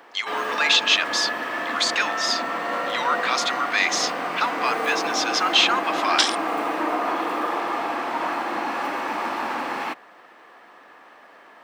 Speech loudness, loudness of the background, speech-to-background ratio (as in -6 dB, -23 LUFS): -22.0 LUFS, -26.0 LUFS, 4.0 dB